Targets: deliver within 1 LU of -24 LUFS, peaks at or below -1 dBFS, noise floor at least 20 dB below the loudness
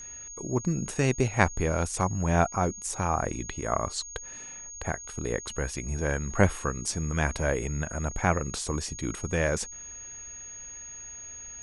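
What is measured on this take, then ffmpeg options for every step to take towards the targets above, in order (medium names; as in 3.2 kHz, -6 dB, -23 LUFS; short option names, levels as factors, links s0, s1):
steady tone 6.6 kHz; tone level -40 dBFS; loudness -30.0 LUFS; peak level -4.0 dBFS; loudness target -24.0 LUFS
-> -af "bandreject=f=6600:w=30"
-af "volume=2,alimiter=limit=0.891:level=0:latency=1"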